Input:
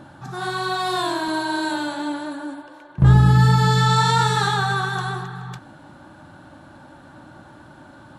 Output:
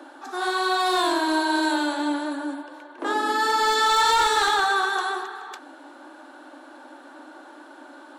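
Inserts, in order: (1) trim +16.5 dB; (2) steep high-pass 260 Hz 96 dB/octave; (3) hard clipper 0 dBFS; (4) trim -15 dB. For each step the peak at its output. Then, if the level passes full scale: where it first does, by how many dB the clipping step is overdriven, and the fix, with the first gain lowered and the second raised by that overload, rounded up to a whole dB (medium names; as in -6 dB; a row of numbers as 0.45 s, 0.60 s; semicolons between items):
+12.5 dBFS, +8.5 dBFS, 0.0 dBFS, -15.0 dBFS; step 1, 8.5 dB; step 1 +7.5 dB, step 4 -6 dB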